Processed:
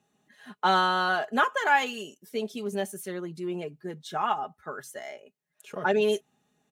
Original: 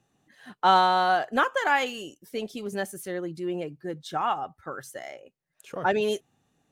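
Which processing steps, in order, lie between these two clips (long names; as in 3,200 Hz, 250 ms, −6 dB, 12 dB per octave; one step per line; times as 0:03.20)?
high-pass filter 64 Hz
low-shelf EQ 140 Hz −4.5 dB
notch filter 4,800 Hz, Q 23
comb filter 4.8 ms, depth 60%
level −1.5 dB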